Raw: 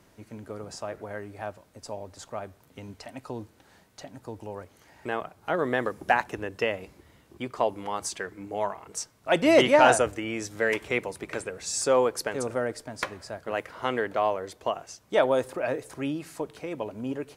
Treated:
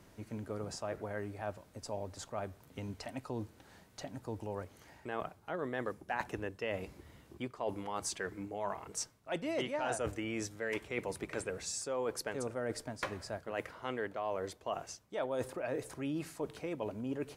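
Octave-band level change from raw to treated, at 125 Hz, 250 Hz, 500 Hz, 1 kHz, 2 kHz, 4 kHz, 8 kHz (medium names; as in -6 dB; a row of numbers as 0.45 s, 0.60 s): -4.0 dB, -9.0 dB, -11.5 dB, -13.0 dB, -12.0 dB, -11.0 dB, -8.0 dB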